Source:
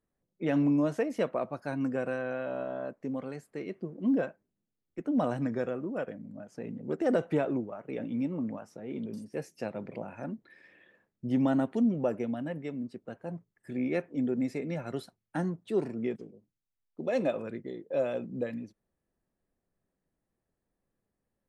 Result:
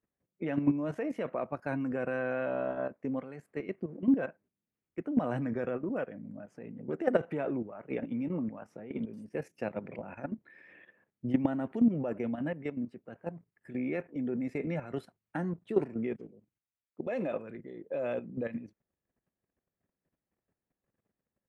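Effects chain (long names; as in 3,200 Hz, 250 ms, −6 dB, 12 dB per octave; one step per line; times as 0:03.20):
high-pass filter 52 Hz
high shelf with overshoot 3,200 Hz −8 dB, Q 1.5
output level in coarse steps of 12 dB
level +3.5 dB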